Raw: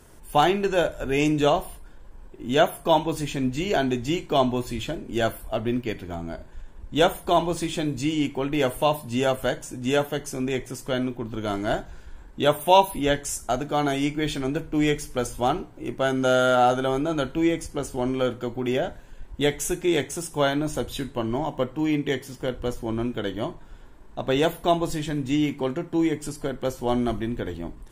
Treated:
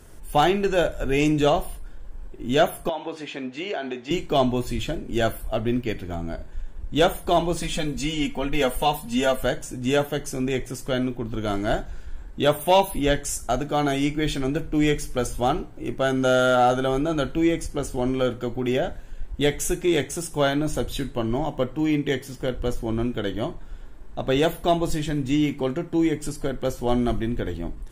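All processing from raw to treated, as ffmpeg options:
ffmpeg -i in.wav -filter_complex "[0:a]asettb=1/sr,asplit=3[link_01][link_02][link_03];[link_01]atrim=end=2.894[link_04];[link_02]atrim=start=2.89:end=4.11,asetpts=PTS-STARTPTS,afade=type=in:duration=0.004:curve=qsin,afade=type=out:start_time=1.216:duration=0.004:curve=qsin,highpass=420,lowpass=3500,acompressor=threshold=-26dB:ratio=4:attack=3.2:release=140:knee=1:detection=peak[link_05];[link_03]atrim=start=4.106[link_06];[link_04][link_05]acrossfade=duration=0.004:curve1=hsin:curve2=qsin[link_07];[link_07][link_06]acrossfade=duration=0.004:curve1=qsin:curve2=hsin,asettb=1/sr,asplit=3[link_08][link_09][link_10];[link_08]atrim=end=7.624[link_11];[link_09]atrim=start=7.62:end=9.43,asetpts=PTS-STARTPTS,afade=type=in:duration=0.004:curve=qsin,afade=type=out:start_time=1.806:duration=0.004:curve=qsin,equalizer=frequency=340:width_type=o:width=0.76:gain=-8,aecho=1:1:4.2:0.8,atrim=end_sample=79821[link_12];[link_10]atrim=start=9.426[link_13];[link_11][link_12]acrossfade=duration=0.004:curve1=hsin:curve2=qsin[link_14];[link_14][link_13]acrossfade=duration=0.004:curve1=qsin:curve2=hsin,equalizer=frequency=970:width_type=o:width=0.21:gain=-5,acontrast=59,lowshelf=frequency=60:gain=8,volume=-5dB" out.wav

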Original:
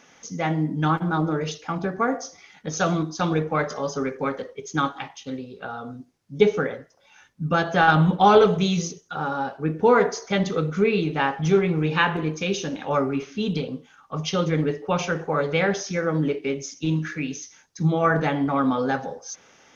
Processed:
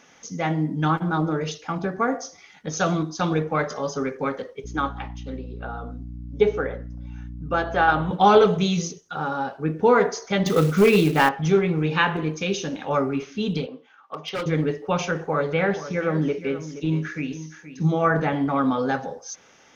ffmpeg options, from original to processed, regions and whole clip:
ffmpeg -i in.wav -filter_complex "[0:a]asettb=1/sr,asplit=3[link_01][link_02][link_03];[link_01]atrim=end=4.644[link_04];[link_02]atrim=start=4.64:end=8.11,asetpts=PTS-STARTPTS,afade=type=in:duration=0.004:curve=qsin,afade=type=out:start_time=3.466:duration=0.004:curve=qsin,highpass=280,aeval=exprs='val(0)+0.02*(sin(2*PI*60*n/s)+sin(2*PI*2*60*n/s)/2+sin(2*PI*3*60*n/s)/3+sin(2*PI*4*60*n/s)/4+sin(2*PI*5*60*n/s)/5)':channel_layout=same,highshelf=frequency=3400:gain=-11.5[link_05];[link_03]atrim=start=8.106[link_06];[link_04][link_05]acrossfade=duration=0.004:curve1=hsin:curve2=qsin[link_07];[link_07][link_06]acrossfade=duration=0.004:curve1=qsin:curve2=hsin,asettb=1/sr,asplit=3[link_08][link_09][link_10];[link_08]atrim=end=10.464[link_11];[link_09]atrim=start=10.46:end=11.29,asetpts=PTS-STARTPTS,afade=type=in:duration=0.004:curve=qsin,afade=type=out:start_time=0.826:duration=0.004:curve=qsin,acontrast=43,volume=10dB,asoftclip=hard,volume=-10dB,acrusher=bits=5:mode=log:mix=0:aa=0.000001[link_12];[link_10]atrim=start=11.286[link_13];[link_11][link_12]acrossfade=duration=0.004:curve1=hsin:curve2=qsin[link_14];[link_14][link_13]acrossfade=duration=0.004:curve1=qsin:curve2=hsin,asettb=1/sr,asplit=3[link_15][link_16][link_17];[link_15]atrim=end=13.664[link_18];[link_16]atrim=start=13.66:end=14.46,asetpts=PTS-STARTPTS,afade=type=in:duration=0.004:curve=qsin,afade=type=out:start_time=0.796:duration=0.004:curve=qsin,highpass=390,lowpass=3100,aeval=exprs='0.0794*(abs(mod(val(0)/0.0794+3,4)-2)-1)':channel_layout=same[link_19];[link_17]atrim=start=14.456[link_20];[link_18][link_19]acrossfade=duration=0.004:curve1=hsin:curve2=qsin[link_21];[link_21][link_20]acrossfade=duration=0.004:curve1=qsin:curve2=hsin,asettb=1/sr,asplit=3[link_22][link_23][link_24];[link_22]atrim=end=15.114[link_25];[link_23]atrim=start=15.11:end=18.33,asetpts=PTS-STARTPTS,afade=type=in:duration=0.004:curve=qsin,afade=type=out:start_time=3.216:duration=0.004:curve=qsin,acrossover=split=2800[link_26][link_27];[link_27]acompressor=threshold=-47dB:ratio=4:attack=1:release=60[link_28];[link_26][link_28]amix=inputs=2:normalize=0,aecho=1:1:474:0.224,atrim=end_sample=142002[link_29];[link_24]atrim=start=18.326[link_30];[link_25][link_29]acrossfade=duration=0.004:curve1=hsin:curve2=qsin[link_31];[link_31][link_30]acrossfade=duration=0.004:curve1=qsin:curve2=hsin" out.wav

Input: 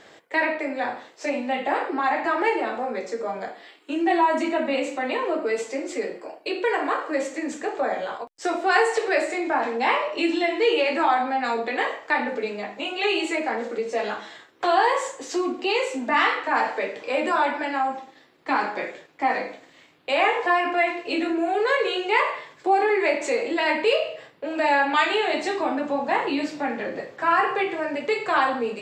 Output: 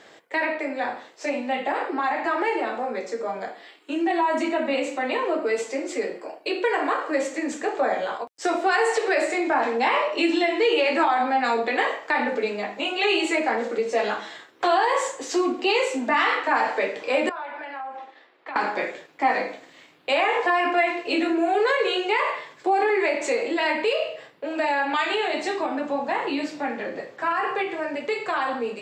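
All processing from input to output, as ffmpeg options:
ffmpeg -i in.wav -filter_complex "[0:a]asettb=1/sr,asplit=3[link_01][link_02][link_03];[link_01]atrim=end=17.294[link_04];[link_02]atrim=start=17.29:end=18.56,asetpts=PTS-STARTPTS,afade=type=in:duration=0.004:curve=qsin,afade=type=out:start_time=1.266:duration=0.004:curve=qsin,acompressor=threshold=-34dB:ratio=5:attack=3.2:release=140:knee=1:detection=peak,acrossover=split=360 3700:gain=0.112 1 0.141[link_05][link_06][link_07];[link_05][link_06][link_07]amix=inputs=3:normalize=0[link_08];[link_03]atrim=start=18.556[link_09];[link_04][link_08]acrossfade=duration=0.004:curve1=hsin:curve2=qsin[link_10];[link_10][link_09]acrossfade=duration=0.004:curve1=qsin:curve2=hsin,highpass=frequency=140:poles=1,alimiter=limit=-14.5dB:level=0:latency=1:release=90,dynaudnorm=framelen=760:gausssize=17:maxgain=3dB" out.wav

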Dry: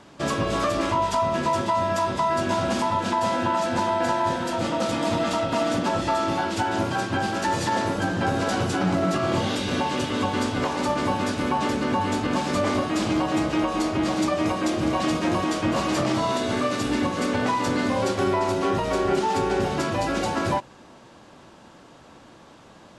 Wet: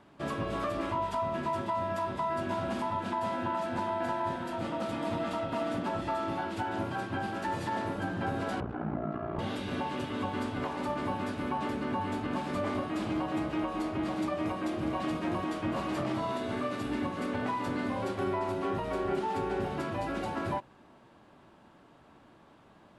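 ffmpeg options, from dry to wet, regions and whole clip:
ffmpeg -i in.wav -filter_complex "[0:a]asettb=1/sr,asplit=3[link_01][link_02][link_03];[link_01]atrim=end=8.604[link_04];[link_02]atrim=start=8.6:end=9.39,asetpts=PTS-STARTPTS,afade=type=in:duration=0.004:curve=qsin,afade=type=out:start_time=0.786:duration=0.004:curve=qsin,lowpass=1400,aeval=exprs='val(0)*sin(2*PI*29*n/s)':channel_layout=same[link_05];[link_03]atrim=start=9.386[link_06];[link_04][link_05]acrossfade=duration=0.004:curve1=hsin:curve2=qsin[link_07];[link_07][link_06]acrossfade=duration=0.004:curve1=qsin:curve2=hsin,equalizer=frequency=6200:width=0.93:gain=-11.5,bandreject=frequency=510:width=12,volume=-8.5dB" out.wav

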